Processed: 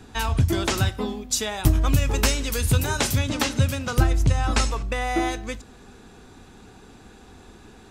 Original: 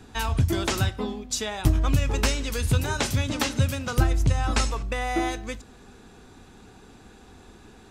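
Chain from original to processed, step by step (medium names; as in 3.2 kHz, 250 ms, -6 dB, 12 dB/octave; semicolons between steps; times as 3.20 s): 0.86–3.19 s: treble shelf 11 kHz +12 dB; trim +2 dB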